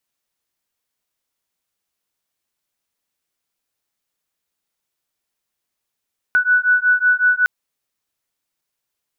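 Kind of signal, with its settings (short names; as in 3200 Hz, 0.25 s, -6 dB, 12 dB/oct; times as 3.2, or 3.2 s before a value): beating tones 1480 Hz, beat 5.4 Hz, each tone -15.5 dBFS 1.11 s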